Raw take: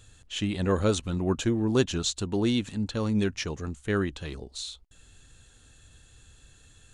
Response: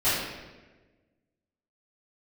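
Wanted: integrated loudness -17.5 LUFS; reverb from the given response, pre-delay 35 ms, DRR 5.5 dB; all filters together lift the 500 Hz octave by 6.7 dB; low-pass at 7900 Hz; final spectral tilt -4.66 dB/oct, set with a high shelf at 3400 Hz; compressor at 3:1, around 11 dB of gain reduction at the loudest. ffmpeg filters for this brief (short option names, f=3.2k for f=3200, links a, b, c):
-filter_complex "[0:a]lowpass=7.9k,equalizer=f=500:t=o:g=8.5,highshelf=f=3.4k:g=7.5,acompressor=threshold=-29dB:ratio=3,asplit=2[a][b];[1:a]atrim=start_sample=2205,adelay=35[c];[b][c]afir=irnorm=-1:irlink=0,volume=-20dB[d];[a][d]amix=inputs=2:normalize=0,volume=13dB"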